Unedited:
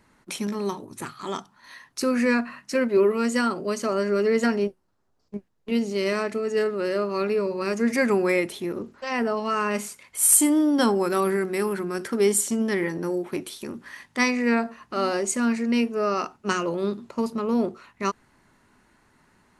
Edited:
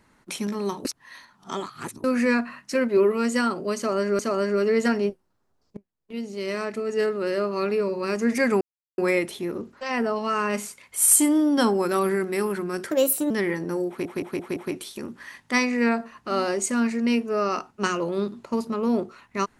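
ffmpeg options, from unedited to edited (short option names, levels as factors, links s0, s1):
-filter_complex "[0:a]asplit=12[s0][s1][s2][s3][s4][s5][s6][s7][s8][s9][s10][s11];[s0]atrim=end=0.852[s12];[s1]atrim=start=0.848:end=2.042,asetpts=PTS-STARTPTS,areverse[s13];[s2]atrim=start=2.038:end=4.192[s14];[s3]atrim=start=3.768:end=5.35,asetpts=PTS-STARTPTS,afade=t=out:st=1.578:d=0.004:c=hsin:silence=0.0707946[s15];[s4]atrim=start=5.35:end=8.19,asetpts=PTS-STARTPTS,afade=t=in:d=1.26:silence=0.0707946,afade=t=out:st=2.836:d=0.004:c=hsin,apad=pad_dur=0.37[s16];[s5]atrim=start=8.19:end=12.124,asetpts=PTS-STARTPTS,afade=t=in:d=0.004:c=hsin[s17];[s6]atrim=start=12.12:end=12.64,asetpts=PTS-STARTPTS,asetrate=58212,aresample=44100[s18];[s7]atrim=start=12.636:end=13.392[s19];[s8]atrim=start=13.218:end=13.392[s20];[s9]atrim=start=13.218:end=13.392[s21];[s10]atrim=start=13.218:end=13.392[s22];[s11]atrim=start=13.218[s23];[s12][s13]acrossfade=d=0.004:c1=hsin:c2=hsin[s24];[s24][s14]acrossfade=d=0.004:c1=hsin:c2=hsin[s25];[s15][s16][s17]concat=n=3:v=0:a=1[s26];[s25][s26]acrossfade=d=0.004:c1=hsin:c2=hsin[s27];[s27][s18]acrossfade=d=0.004:c1=hsin:c2=hsin[s28];[s28][s19]acrossfade=d=0.004:c1=hsin:c2=hsin[s29];[s29][s20]acrossfade=d=0.004:c1=hsin:c2=hsin[s30];[s30][s21]acrossfade=d=0.004:c1=hsin:c2=hsin[s31];[s31][s22]acrossfade=d=0.004:c1=hsin:c2=hsin[s32];[s32][s23]acrossfade=d=0.004:c1=hsin:c2=hsin"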